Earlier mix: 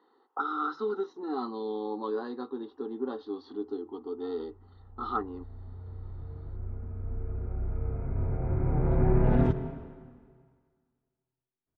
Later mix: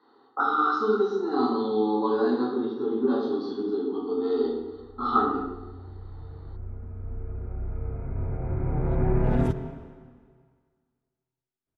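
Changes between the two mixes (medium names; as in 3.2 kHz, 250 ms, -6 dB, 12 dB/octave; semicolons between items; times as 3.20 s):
background: remove distance through air 170 m; reverb: on, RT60 1.1 s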